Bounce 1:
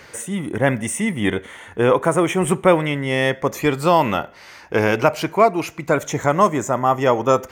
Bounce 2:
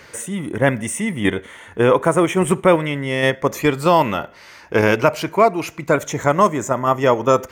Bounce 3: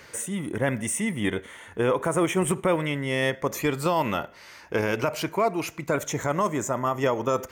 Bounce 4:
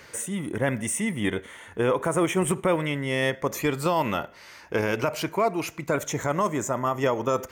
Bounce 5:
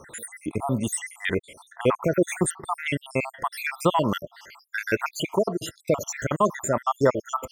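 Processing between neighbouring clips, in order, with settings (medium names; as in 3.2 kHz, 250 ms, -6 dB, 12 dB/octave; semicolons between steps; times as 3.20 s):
band-stop 770 Hz, Q 12; in parallel at -2 dB: level held to a coarse grid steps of 18 dB; on the sum: trim -2 dB
peak limiter -9 dBFS, peak gain reduction 7.5 dB; treble shelf 6.6 kHz +4.5 dB; trim -5 dB
no audible change
random holes in the spectrogram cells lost 73%; trim +5 dB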